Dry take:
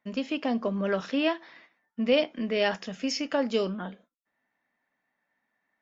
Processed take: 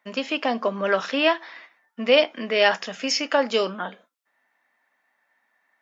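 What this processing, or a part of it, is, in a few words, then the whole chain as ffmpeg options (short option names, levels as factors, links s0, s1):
filter by subtraction: -filter_complex "[0:a]asplit=2[s0][s1];[s1]lowpass=1000,volume=-1[s2];[s0][s2]amix=inputs=2:normalize=0,volume=2.51"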